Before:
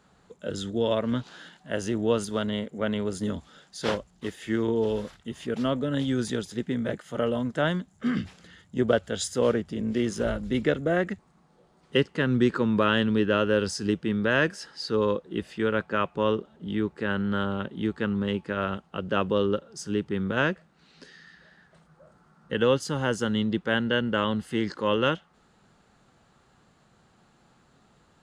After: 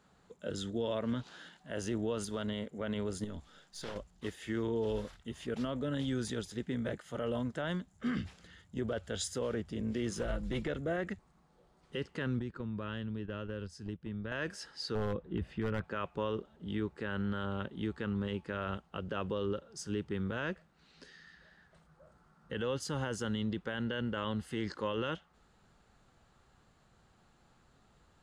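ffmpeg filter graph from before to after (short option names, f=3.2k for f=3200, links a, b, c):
-filter_complex "[0:a]asettb=1/sr,asplit=3[a][b][c];[a]atrim=end=3.244[d];[b]atrim=start=3.24:end=3.96,asetpts=PTS-STARTPTS,afade=t=in:d=0.004:c=qsin,afade=t=out:st=0.716:d=0.004:c=qsin,aeval=exprs='if(lt(val(0),0),0.708*val(0),val(0))':c=same,acompressor=threshold=-33dB:ratio=4:attack=3.2:release=140:knee=1:detection=peak[e];[c]atrim=start=3.956[f];[d][e]acrossfade=d=0.004:c1=hsin:c2=qsin[g];[g][f]acrossfade=d=0.004:c1=qsin:c2=hsin,asettb=1/sr,asplit=3[h][i][j];[h]atrim=end=10.114[k];[i]atrim=start=10.11:end=10.68,asetpts=PTS-STARTPTS,afade=t=in:d=0.004:c=qsin,afade=t=out:st=0.566:d=0.004:c=qsin,aecho=1:1:6:0.42,atrim=end_sample=25137,aeval=exprs='clip(val(0),-1,0.0891)':c=same[l];[j]atrim=start=10.676[m];[k][l]acrossfade=d=0.004:c1=hsin:c2=qsin[n];[n][m]acrossfade=d=0.004:c1=qsin:c2=hsin,asettb=1/sr,asplit=3[o][p][q];[o]atrim=end=12.394[r];[p]atrim=start=12.39:end=14.32,asetpts=PTS-STARTPTS,afade=t=in:d=0.004:c=qsin,afade=t=out:st=1.926:d=0.004:c=qsin,agate=range=-12dB:threshold=-28dB:ratio=16:release=100:detection=peak,bass=f=250:g=9,treble=f=4k:g=-3,acompressor=threshold=-34dB:ratio=3:attack=3.2:release=140:knee=1:detection=peak[s];[q]atrim=start=14.316[t];[r][s]acrossfade=d=0.004:c1=hsin:c2=qsin[u];[u][t]acrossfade=d=0.004:c1=qsin:c2=hsin,asettb=1/sr,asplit=3[v][w][x];[v]atrim=end=14.954[y];[w]atrim=start=14.95:end=15.84,asetpts=PTS-STARTPTS,afade=t=in:d=0.004:c=qsin,afade=t=out:st=0.886:d=0.004:c=qsin,bass=f=250:g=10,treble=f=4k:g=-13,aeval=exprs='0.2*(abs(mod(val(0)/0.2+3,4)-2)-1)':c=same[z];[x]atrim=start=15.836[aa];[y][z]acrossfade=d=0.004:c1=hsin:c2=qsin[ab];[ab][aa]acrossfade=d=0.004:c1=qsin:c2=hsin,asubboost=boost=2.5:cutoff=94,alimiter=limit=-20dB:level=0:latency=1:release=31,volume=-5.5dB"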